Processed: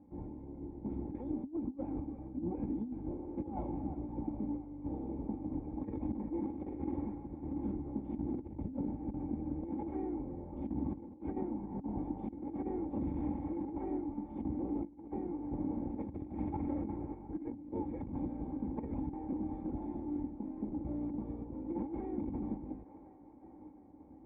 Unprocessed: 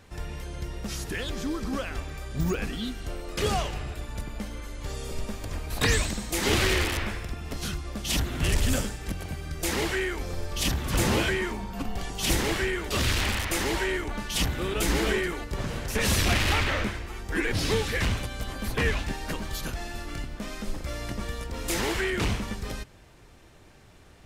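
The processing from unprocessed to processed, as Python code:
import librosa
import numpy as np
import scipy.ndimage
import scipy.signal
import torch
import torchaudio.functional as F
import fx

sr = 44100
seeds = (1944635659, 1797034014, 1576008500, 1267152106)

y = fx.lower_of_two(x, sr, delay_ms=3.7)
y = fx.echo_wet_bandpass(y, sr, ms=354, feedback_pct=73, hz=1100.0, wet_db=-13.5)
y = fx.tremolo_random(y, sr, seeds[0], hz=3.5, depth_pct=55)
y = fx.formant_cascade(y, sr, vowel='u')
y = fx.over_compress(y, sr, threshold_db=-44.0, ratio=-0.5)
y = scipy.signal.sosfilt(scipy.signal.butter(2, 83.0, 'highpass', fs=sr, output='sos'), y)
y = fx.low_shelf(y, sr, hz=140.0, db=7.5)
y = y * 10.0 ** (6.5 / 20.0)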